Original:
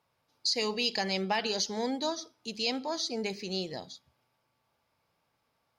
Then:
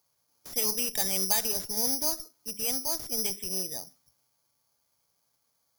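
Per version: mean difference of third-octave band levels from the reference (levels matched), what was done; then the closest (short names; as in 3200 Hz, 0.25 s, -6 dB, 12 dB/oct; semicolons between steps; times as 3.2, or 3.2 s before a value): 12.0 dB: in parallel at -7 dB: Schmitt trigger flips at -28 dBFS; on the sum: careless resampling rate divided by 8×, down filtered, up zero stuff; gain -6 dB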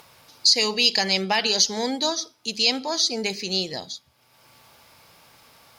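3.0 dB: high shelf 2200 Hz +9 dB; upward compressor, threshold -44 dBFS; gain +5 dB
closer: second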